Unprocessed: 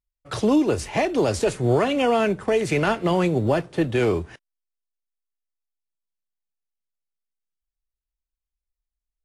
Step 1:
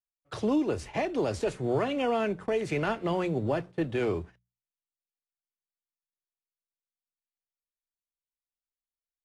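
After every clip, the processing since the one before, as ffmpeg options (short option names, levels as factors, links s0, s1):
-af "agate=range=0.158:threshold=0.02:ratio=16:detection=peak,highshelf=f=6500:g=-9,bandreject=f=60:t=h:w=6,bandreject=f=120:t=h:w=6,bandreject=f=180:t=h:w=6,volume=0.422"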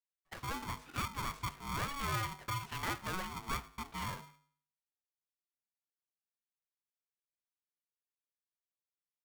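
-filter_complex "[0:a]acrossover=split=470 2200:gain=0.0891 1 0.178[s0][s1][s2];[s0][s1][s2]amix=inputs=3:normalize=0,bandreject=f=102.8:t=h:w=4,bandreject=f=205.6:t=h:w=4,bandreject=f=308.4:t=h:w=4,bandreject=f=411.2:t=h:w=4,bandreject=f=514:t=h:w=4,bandreject=f=616.8:t=h:w=4,bandreject=f=719.6:t=h:w=4,bandreject=f=822.4:t=h:w=4,bandreject=f=925.2:t=h:w=4,bandreject=f=1028:t=h:w=4,bandreject=f=1130.8:t=h:w=4,bandreject=f=1233.6:t=h:w=4,bandreject=f=1336.4:t=h:w=4,aeval=exprs='val(0)*sgn(sin(2*PI*560*n/s))':c=same,volume=0.596"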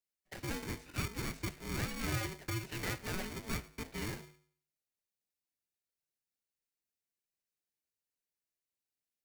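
-filter_complex "[0:a]bandreject=f=3300:w=6.8,acrossover=split=160|1400|2200[s0][s1][s2][s3];[s1]acrusher=samples=33:mix=1:aa=0.000001[s4];[s0][s4][s2][s3]amix=inputs=4:normalize=0,volume=1.19"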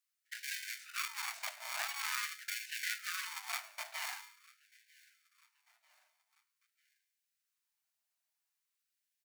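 -af "aeval=exprs='clip(val(0),-1,0.00794)':c=same,aecho=1:1:944|1888|2832:0.0631|0.0309|0.0151,afftfilt=real='re*gte(b*sr/1024,570*pow(1500/570,0.5+0.5*sin(2*PI*0.46*pts/sr)))':imag='im*gte(b*sr/1024,570*pow(1500/570,0.5+0.5*sin(2*PI*0.46*pts/sr)))':win_size=1024:overlap=0.75,volume=1.88"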